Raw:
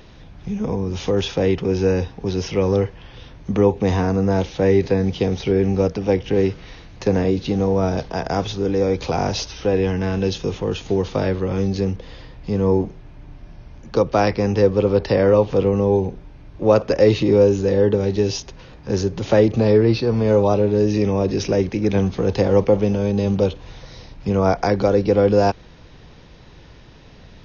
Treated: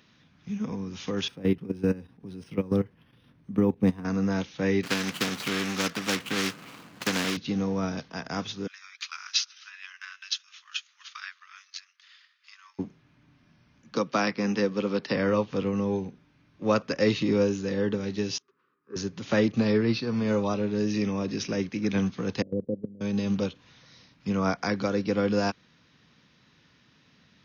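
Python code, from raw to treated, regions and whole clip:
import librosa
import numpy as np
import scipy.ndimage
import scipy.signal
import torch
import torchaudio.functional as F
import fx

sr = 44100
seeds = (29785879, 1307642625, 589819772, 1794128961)

y = fx.chain(x, sr, fx.tilt_shelf(db=6.0, hz=830.0),
    fx.level_steps(step_db=13),
    fx.resample_linear(factor=3), at=(1.28, 4.05))
y = fx.chain(y, sr, fx.median_filter(points=25),
    fx.highpass(hz=170.0, slope=12),
    fx.spectral_comp(ratio=2.0), at=(4.83, 7.37))
y = fx.chain(y, sr, fx.steep_highpass(hz=1200.0, slope=48),
    fx.transient(attack_db=6, sustain_db=-8),
    fx.echo_single(ms=257, db=-21.5), at=(8.67, 12.79))
y = fx.chain(y, sr, fx.highpass(hz=140.0, slope=24),
    fx.band_squash(depth_pct=40), at=(13.95, 15.16))
y = fx.chain(y, sr, fx.double_bandpass(hz=690.0, octaves=1.6),
    fx.band_widen(depth_pct=40), at=(18.38, 18.96))
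y = fx.chain(y, sr, fx.steep_lowpass(hz=540.0, slope=36),
    fx.level_steps(step_db=16), at=(22.42, 23.01))
y = scipy.signal.sosfilt(scipy.signal.butter(2, 190.0, 'highpass', fs=sr, output='sos'), y)
y = fx.band_shelf(y, sr, hz=550.0, db=-10.0, octaves=1.7)
y = fx.upward_expand(y, sr, threshold_db=-38.0, expansion=1.5)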